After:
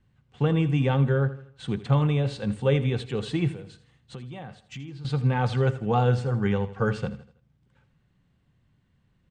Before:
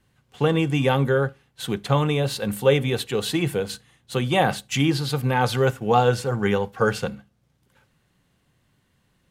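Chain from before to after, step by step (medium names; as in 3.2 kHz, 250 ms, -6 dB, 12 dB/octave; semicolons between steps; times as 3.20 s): elliptic low-pass 8.7 kHz, stop band 40 dB; de-esser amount 55%; tone controls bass +9 dB, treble -8 dB; 3.51–5.05 s: compression 4:1, threshold -34 dBFS, peak gain reduction 18.5 dB; feedback delay 81 ms, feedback 43%, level -15 dB; trim -6 dB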